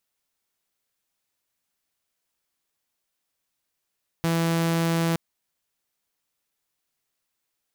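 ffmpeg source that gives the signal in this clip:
ffmpeg -f lavfi -i "aevalsrc='0.119*(2*mod(166*t,1)-1)':duration=0.92:sample_rate=44100" out.wav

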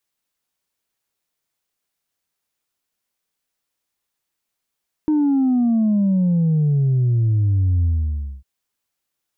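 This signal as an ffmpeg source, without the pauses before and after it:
ffmpeg -f lavfi -i "aevalsrc='0.188*clip((3.35-t)/0.59,0,1)*tanh(1.12*sin(2*PI*310*3.35/log(65/310)*(exp(log(65/310)*t/3.35)-1)))/tanh(1.12)':duration=3.35:sample_rate=44100" out.wav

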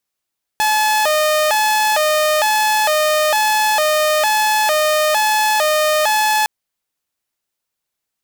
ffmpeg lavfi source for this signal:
ffmpeg -f lavfi -i "aevalsrc='0.299*(2*mod((735.5*t+122.5/1.1*(0.5-abs(mod(1.1*t,1)-0.5))),1)-1)':duration=5.86:sample_rate=44100" out.wav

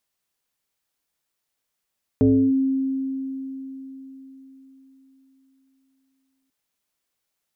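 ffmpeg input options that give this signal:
ffmpeg -f lavfi -i "aevalsrc='0.251*pow(10,-3*t/4.29)*sin(2*PI*267*t+1*clip(1-t/0.32,0,1)*sin(2*PI*0.61*267*t))':duration=4.29:sample_rate=44100" out.wav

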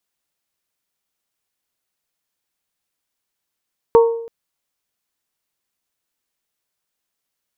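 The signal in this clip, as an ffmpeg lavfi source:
ffmpeg -f lavfi -i "aevalsrc='0.562*pow(10,-3*t/0.71)*sin(2*PI*461*t)+0.224*pow(10,-3*t/0.437)*sin(2*PI*922*t)+0.0891*pow(10,-3*t/0.385)*sin(2*PI*1106.4*t)':duration=0.33:sample_rate=44100" out.wav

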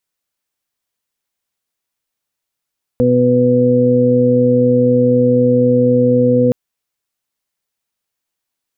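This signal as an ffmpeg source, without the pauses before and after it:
ffmpeg -f lavfi -i "aevalsrc='0.141*sin(2*PI*124*t)+0.224*sin(2*PI*248*t)+0.0422*sin(2*PI*372*t)+0.266*sin(2*PI*496*t)':duration=3.52:sample_rate=44100" out.wav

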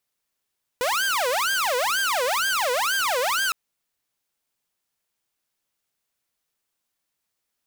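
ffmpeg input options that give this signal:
ffmpeg -f lavfi -i "aevalsrc='0.119*(2*mod((1042.5*t-557.5/(2*PI*2.1)*sin(2*PI*2.1*t)),1)-1)':duration=2.71:sample_rate=44100" out.wav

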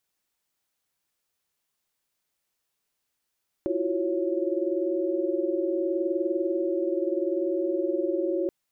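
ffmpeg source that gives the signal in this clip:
ffmpeg -f lavfi -i "aevalsrc='0.0335*(sin(2*PI*329.63*t)+sin(2*PI*349.23*t)+sin(2*PI*369.99*t)+sin(2*PI*554.37*t))':duration=4.83:sample_rate=44100" out.wav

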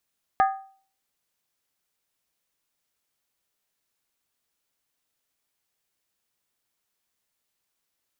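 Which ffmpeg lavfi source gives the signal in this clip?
ffmpeg -f lavfi -i "aevalsrc='0.2*pow(10,-3*t/0.46)*sin(2*PI*775*t)+0.0944*pow(10,-3*t/0.364)*sin(2*PI*1235.4*t)+0.0447*pow(10,-3*t/0.315)*sin(2*PI*1655.4*t)+0.0211*pow(10,-3*t/0.304)*sin(2*PI*1779.4*t)+0.01*pow(10,-3*t/0.282)*sin(2*PI*2056.1*t)':duration=0.63:sample_rate=44100" out.wav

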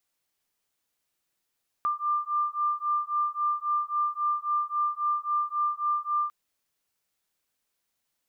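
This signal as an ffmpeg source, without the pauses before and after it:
ffmpeg -f lavfi -i "aevalsrc='0.0398*(sin(2*PI*1190*t)+sin(2*PI*1193.7*t))':duration=4.45:sample_rate=44100" out.wav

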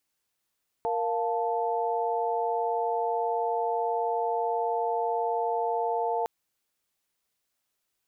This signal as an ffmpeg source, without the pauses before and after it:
ffmpeg -f lavfi -i "aevalsrc='0.0335*(sin(2*PI*466.16*t)+sin(2*PI*698.46*t)+sin(2*PI*880*t))':duration=5.41:sample_rate=44100" out.wav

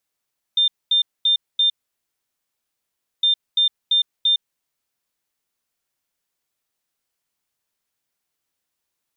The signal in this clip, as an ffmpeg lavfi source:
ffmpeg -f lavfi -i "aevalsrc='0.211*sin(2*PI*3600*t)*clip(min(mod(mod(t,2.66),0.34),0.11-mod(mod(t,2.66),0.34))/0.005,0,1)*lt(mod(t,2.66),1.36)':duration=5.32:sample_rate=44100" out.wav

